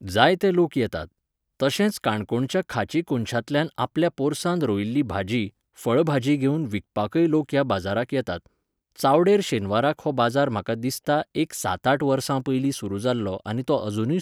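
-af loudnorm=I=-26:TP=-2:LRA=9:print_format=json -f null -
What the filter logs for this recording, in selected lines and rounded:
"input_i" : "-23.9",
"input_tp" : "-1.8",
"input_lra" : "1.8",
"input_thresh" : "-34.0",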